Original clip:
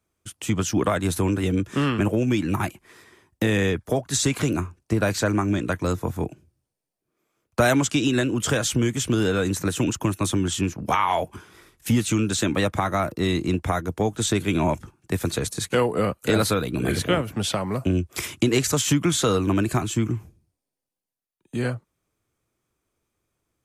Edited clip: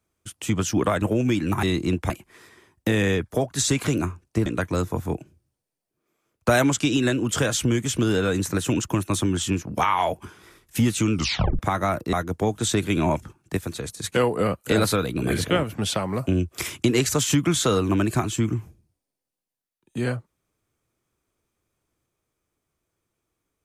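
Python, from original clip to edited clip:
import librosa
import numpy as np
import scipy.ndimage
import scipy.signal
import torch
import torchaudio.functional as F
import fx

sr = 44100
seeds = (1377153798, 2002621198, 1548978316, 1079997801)

y = fx.edit(x, sr, fx.cut(start_s=1.02, length_s=1.02),
    fx.cut(start_s=5.01, length_s=0.56),
    fx.tape_stop(start_s=12.23, length_s=0.47),
    fx.move(start_s=13.24, length_s=0.47, to_s=2.65),
    fx.clip_gain(start_s=15.15, length_s=0.47, db=-6.0), tone=tone)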